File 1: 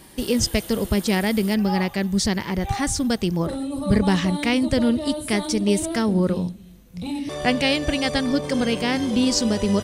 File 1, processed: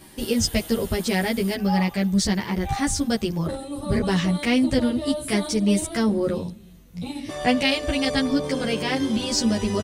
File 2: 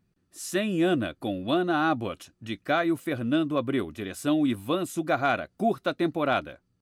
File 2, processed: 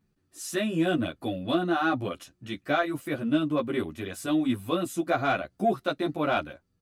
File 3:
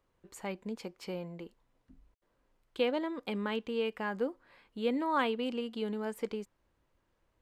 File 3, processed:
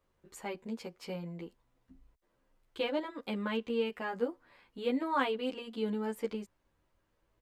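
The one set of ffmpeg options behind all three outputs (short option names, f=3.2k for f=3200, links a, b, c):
-filter_complex "[0:a]asplit=2[a][b];[b]asoftclip=type=tanh:threshold=-18.5dB,volume=-9dB[c];[a][c]amix=inputs=2:normalize=0,asplit=2[d][e];[e]adelay=11,afreqshift=0.33[f];[d][f]amix=inputs=2:normalize=1"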